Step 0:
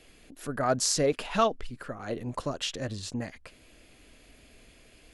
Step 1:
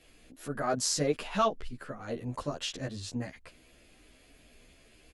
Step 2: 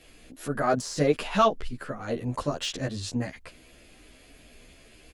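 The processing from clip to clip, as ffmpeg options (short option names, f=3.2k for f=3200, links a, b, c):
-filter_complex "[0:a]asplit=2[a][b];[b]adelay=11.8,afreqshift=2.1[c];[a][c]amix=inputs=2:normalize=1"
-af "deesser=0.85,volume=6dB"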